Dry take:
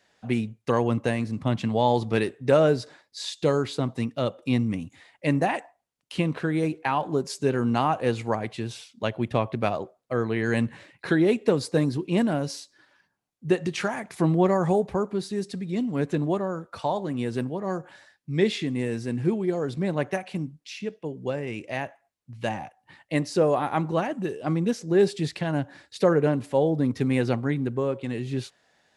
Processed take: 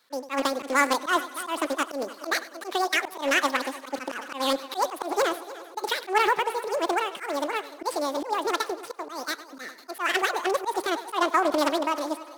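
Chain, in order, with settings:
running median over 15 samples
on a send: echo machine with several playback heads 233 ms, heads first and third, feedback 51%, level −18 dB
on the sum: wrong playback speed 33 rpm record played at 78 rpm
high-pass filter 55 Hz 24 dB per octave
parametric band 92 Hz −12 dB 1.2 octaves
volume swells 107 ms
high-shelf EQ 4,000 Hz +10 dB
highs frequency-modulated by the lows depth 0.17 ms

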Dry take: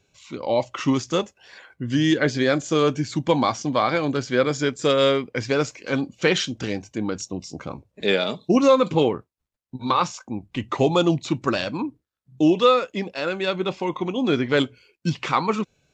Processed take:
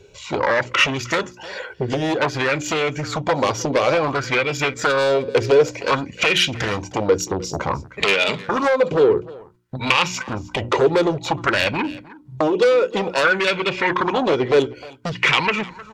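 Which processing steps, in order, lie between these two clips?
phase distortion by the signal itself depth 0.075 ms
RIAA equalisation playback
mains-hum notches 60/120/180/240/300/360 Hz
comb filter 2.1 ms, depth 40%
downward compressor 10 to 1, threshold −23 dBFS, peak gain reduction 16 dB
sine wavefolder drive 9 dB, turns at −13.5 dBFS
spectral tilt +3 dB per octave
single-tap delay 309 ms −20 dB
auto-filter bell 0.55 Hz 400–2,600 Hz +12 dB
level −1.5 dB

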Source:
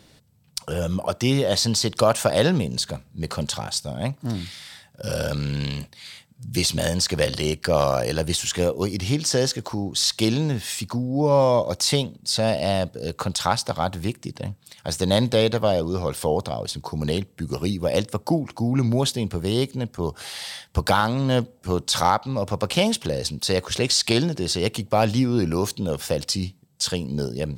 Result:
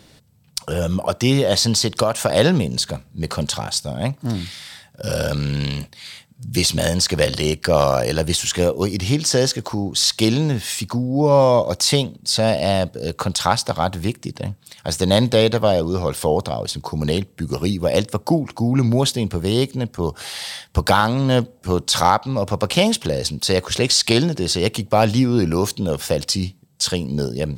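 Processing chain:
0:01.80–0:02.30: downward compressor, threshold −18 dBFS, peak gain reduction 6.5 dB
level +4 dB

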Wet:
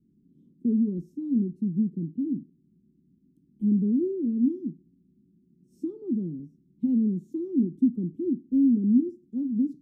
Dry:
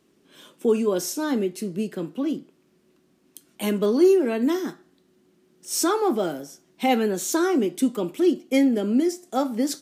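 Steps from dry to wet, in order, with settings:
inverse Chebyshev low-pass filter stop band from 620 Hz, stop band 50 dB
level +5 dB

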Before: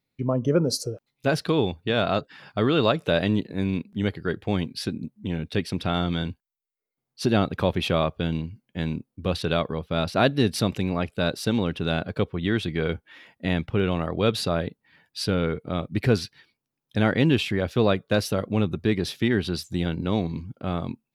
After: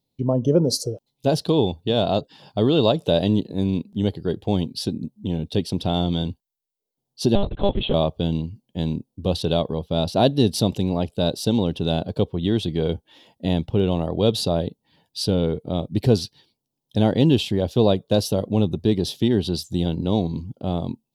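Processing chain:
flat-topped bell 1,700 Hz −15 dB 1.3 octaves
0:07.35–0:07.94: one-pitch LPC vocoder at 8 kHz 200 Hz
level +3.5 dB

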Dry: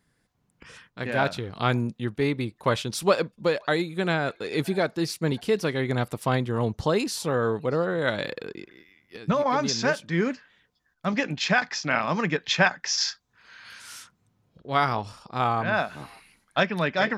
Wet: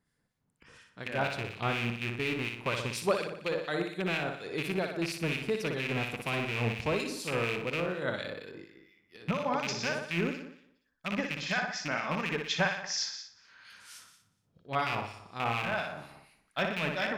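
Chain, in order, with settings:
loose part that buzzes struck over −30 dBFS, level −14 dBFS
flutter between parallel walls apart 10.2 metres, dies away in 0.69 s
two-band tremolo in antiphase 4.2 Hz, depth 50%, crossover 1,600 Hz
level −7 dB

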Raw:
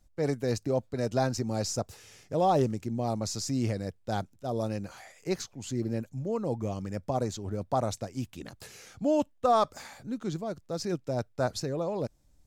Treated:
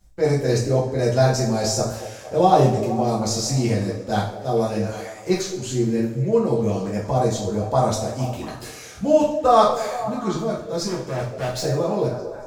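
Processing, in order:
echo through a band-pass that steps 230 ms, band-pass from 440 Hz, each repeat 0.7 octaves, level −9 dB
0:10.86–0:11.60: hard clipping −33 dBFS, distortion −17 dB
coupled-rooms reverb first 0.46 s, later 1.6 s, from −17 dB, DRR −6 dB
level +3 dB

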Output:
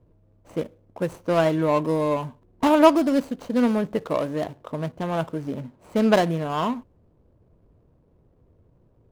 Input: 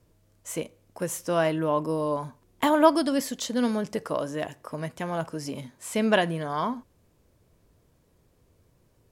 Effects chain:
running median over 25 samples
one half of a high-frequency compander decoder only
level +5 dB

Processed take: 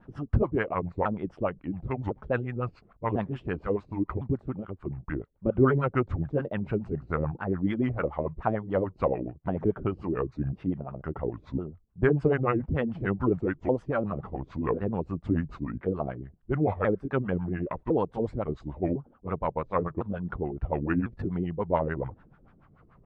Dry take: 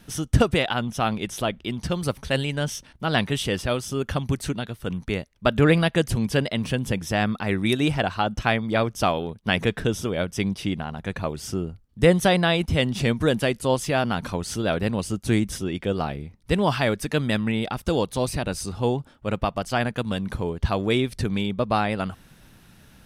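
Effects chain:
pitch shifter swept by a sawtooth −6.5 semitones, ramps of 1,053 ms
pitch vibrato 10 Hz 43 cents
auto-filter low-pass sine 6.9 Hz 320–1,500 Hz
level −5.5 dB

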